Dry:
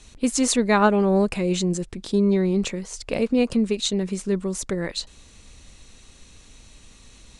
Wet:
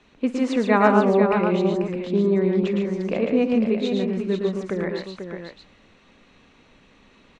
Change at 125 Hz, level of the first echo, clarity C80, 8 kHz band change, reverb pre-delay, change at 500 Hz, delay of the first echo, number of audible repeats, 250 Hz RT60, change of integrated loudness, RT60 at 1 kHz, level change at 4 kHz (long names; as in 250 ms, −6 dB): −0.5 dB, −18.5 dB, no reverb audible, below −20 dB, no reverb audible, +3.0 dB, 54 ms, 5, no reverb audible, +1.0 dB, no reverb audible, −7.5 dB